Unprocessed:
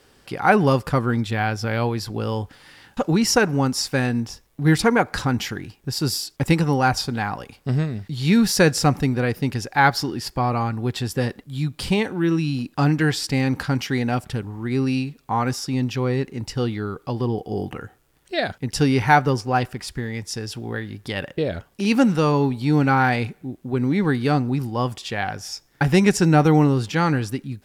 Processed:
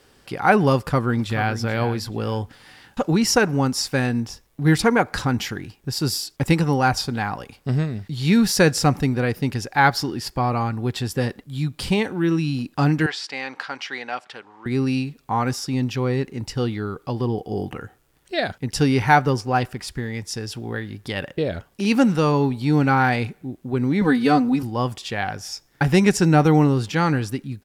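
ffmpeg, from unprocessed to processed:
ffmpeg -i in.wav -filter_complex "[0:a]asplit=2[link_01][link_02];[link_02]afade=type=in:start_time=0.76:duration=0.01,afade=type=out:start_time=1.56:duration=0.01,aecho=0:1:430|860|1290:0.251189|0.0627972|0.0156993[link_03];[link_01][link_03]amix=inputs=2:normalize=0,asettb=1/sr,asplit=3[link_04][link_05][link_06];[link_04]atrim=end=13.064[link_07];[link_05]atrim=start=13.06:end=14.66,asetpts=PTS-STARTPTS,afade=type=in:duration=0.004:curve=qsin,afade=type=out:start_time=1.596:duration=0.004:curve=qsin,highpass=720,lowpass=4500[link_08];[link_06]atrim=start=14.656[link_09];[link_07][link_08]acrossfade=duration=0.004:curve1=hsin:curve2=qsin[link_10];[link_10][link_09]acrossfade=duration=0.004:curve1=qsin:curve2=hsin,asettb=1/sr,asplit=3[link_11][link_12][link_13];[link_11]atrim=end=24.014[link_14];[link_12]atrim=start=24.01:end=24.63,asetpts=PTS-STARTPTS,afade=type=in:duration=0.004:curve=qsin,afade=type=out:start_time=0.616:duration=0.004:curve=qsin,aecho=1:1:4:0.97,atrim=end_sample=27342[link_15];[link_13]atrim=start=24.626[link_16];[link_14][link_15]acrossfade=duration=0.004:curve1=hsin:curve2=qsin[link_17];[link_17][link_16]acrossfade=duration=0.004:curve1=qsin:curve2=hsin" out.wav

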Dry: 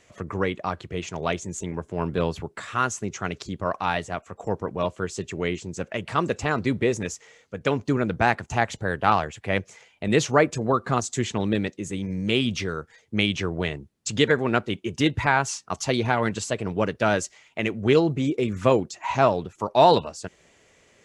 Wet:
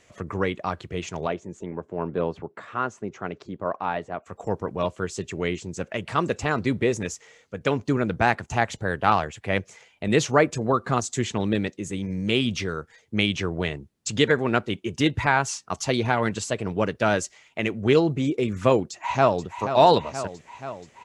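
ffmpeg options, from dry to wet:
ffmpeg -i in.wav -filter_complex "[0:a]asplit=3[link_01][link_02][link_03];[link_01]afade=type=out:start_time=1.26:duration=0.02[link_04];[link_02]bandpass=frequency=490:width_type=q:width=0.5,afade=type=in:start_time=1.26:duration=0.02,afade=type=out:start_time=4.25:duration=0.02[link_05];[link_03]afade=type=in:start_time=4.25:duration=0.02[link_06];[link_04][link_05][link_06]amix=inputs=3:normalize=0,asplit=2[link_07][link_08];[link_08]afade=type=in:start_time=18.88:duration=0.01,afade=type=out:start_time=19.45:duration=0.01,aecho=0:1:480|960|1440|1920|2400|2880|3360|3840|4320|4800:0.334965|0.234476|0.164133|0.114893|0.0804252|0.0562976|0.0394083|0.0275858|0.0193101|0.0135171[link_09];[link_07][link_09]amix=inputs=2:normalize=0" out.wav

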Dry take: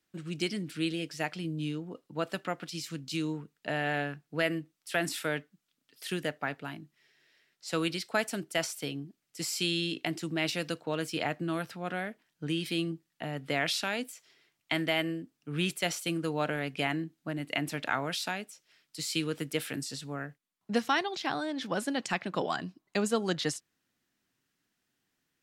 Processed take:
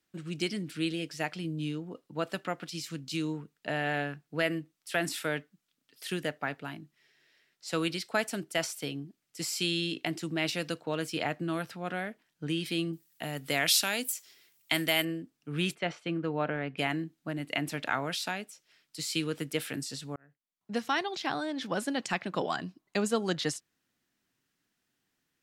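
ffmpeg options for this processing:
ffmpeg -i in.wav -filter_complex "[0:a]asettb=1/sr,asplit=3[link_01][link_02][link_03];[link_01]atrim=end=12.934[link_04];[link_02]atrim=start=12.93:end=15.05,asetpts=PTS-STARTPTS,afade=type=in:duration=0.004:curve=qsin,afade=type=out:start_time=2.116:duration=0.004:curve=qsin,aemphasis=mode=production:type=75fm[link_05];[link_03]atrim=start=15.046[link_06];[link_04][link_05]acrossfade=duration=0.004:curve1=hsin:curve2=qsin[link_07];[link_07][link_06]acrossfade=duration=0.004:curve1=qsin:curve2=hsin,asplit=3[link_08][link_09][link_10];[link_08]afade=type=out:start_time=15.74:duration=0.02[link_11];[link_09]lowpass=2300,afade=type=in:start_time=15.74:duration=0.02,afade=type=out:start_time=16.77:duration=0.02[link_12];[link_10]afade=type=in:start_time=16.77:duration=0.02[link_13];[link_11][link_12][link_13]amix=inputs=3:normalize=0,asplit=2[link_14][link_15];[link_14]atrim=end=20.16,asetpts=PTS-STARTPTS,afade=type=out:start_time=20.156:duration=0.004:curve=hsin[link_16];[link_15]atrim=start=20.16,asetpts=PTS-STARTPTS,afade=type=in:duration=0.95[link_17];[link_16][link_17]concat=n=2:v=0:a=1" out.wav

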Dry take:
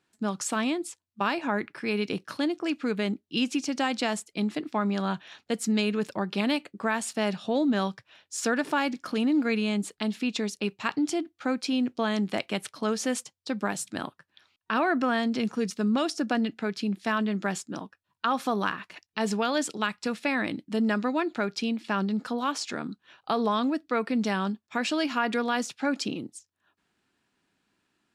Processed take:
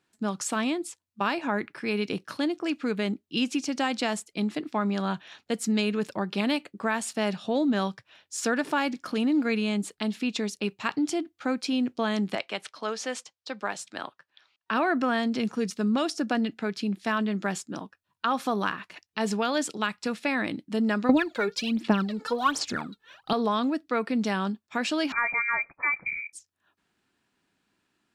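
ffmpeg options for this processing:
ffmpeg -i in.wav -filter_complex "[0:a]asettb=1/sr,asplit=3[link_01][link_02][link_03];[link_01]atrim=end=12.354[link_04];[link_02]atrim=start=12.35:end=14.71,asetpts=PTS-STARTPTS,afade=type=in:duration=0.004:curve=qsin,afade=type=out:start_time=2.356:duration=0.004:curve=qsin,acrossover=split=420 7200:gain=0.224 1 0.178[link_05][link_06][link_07];[link_05][link_06][link_07]amix=inputs=3:normalize=0[link_08];[link_03]atrim=start=14.706[link_09];[link_04][link_08]acrossfade=duration=0.004:curve1=hsin:curve2=qsin[link_10];[link_10][link_09]acrossfade=duration=0.004:curve1=qsin:curve2=hsin,asettb=1/sr,asplit=3[link_11][link_12][link_13];[link_11]atrim=end=21.094[link_14];[link_12]atrim=start=21.09:end=23.33,asetpts=PTS-STARTPTS,afade=type=in:duration=0.004:curve=qsin,afade=type=out:start_time=2.236:duration=0.004:curve=qsin,aphaser=in_gain=1:out_gain=1:delay=2.3:decay=0.77:speed=1.3:type=sinusoidal[link_15];[link_13]atrim=start=23.326[link_16];[link_14][link_15]acrossfade=duration=0.004:curve1=hsin:curve2=qsin[link_17];[link_17][link_16]acrossfade=duration=0.004:curve1=qsin:curve2=hsin,asettb=1/sr,asplit=3[link_18][link_19][link_20];[link_18]atrim=end=25.124[link_21];[link_19]atrim=start=25.12:end=26.33,asetpts=PTS-STARTPTS,afade=type=in:duration=0.004:curve=qsin,afade=type=out:start_time=1.206:duration=0.004:curve=qsin,lowpass=frequency=2200:width_type=q:width=0.5098,lowpass=frequency=2200:width_type=q:width=0.6013,lowpass=frequency=2200:width_type=q:width=0.9,lowpass=frequency=2200:width_type=q:width=2.563,afreqshift=-2600[link_22];[link_20]atrim=start=26.326[link_23];[link_21][link_22]acrossfade=duration=0.004:curve1=hsin:curve2=qsin[link_24];[link_24][link_23]acrossfade=duration=0.004:curve1=qsin:curve2=hsin" out.wav

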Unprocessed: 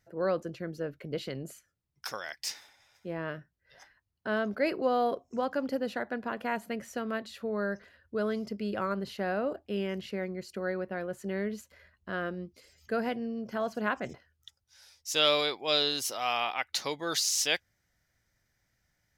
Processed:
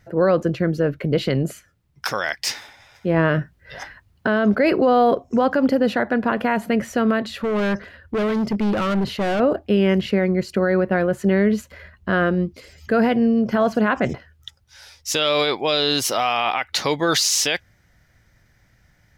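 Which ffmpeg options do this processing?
ffmpeg -i in.wav -filter_complex "[0:a]asettb=1/sr,asplit=3[link_01][link_02][link_03];[link_01]atrim=end=3.144[link_04];[link_02]atrim=start=3.14:end=4.27,asetpts=PTS-STARTPTS,afade=type=in:duration=0.004:curve=qsin,afade=type=out:start_time=1.126:duration=0.004:curve=qsin,acontrast=46[link_05];[link_03]atrim=start=4.266[link_06];[link_04][link_05]acrossfade=duration=0.004:curve1=hsin:curve2=qsin[link_07];[link_07][link_06]acrossfade=duration=0.004:curve1=qsin:curve2=hsin,asettb=1/sr,asplit=3[link_08][link_09][link_10];[link_08]atrim=end=7.284[link_11];[link_09]atrim=start=7.28:end=9.4,asetpts=PTS-STARTPTS,afade=type=in:duration=0.004:curve=qsin,afade=type=out:start_time=2.116:duration=0.004:curve=qsin,asoftclip=type=hard:threshold=-36dB[link_12];[link_10]atrim=start=9.396[link_13];[link_11][link_12]acrossfade=duration=0.004:curve1=hsin:curve2=qsin[link_14];[link_14][link_13]acrossfade=duration=0.004:curve1=qsin:curve2=hsin,bass=frequency=250:gain=4,treble=frequency=4000:gain=-7,alimiter=level_in=24dB:limit=-1dB:release=50:level=0:latency=1,volume=-8dB" out.wav

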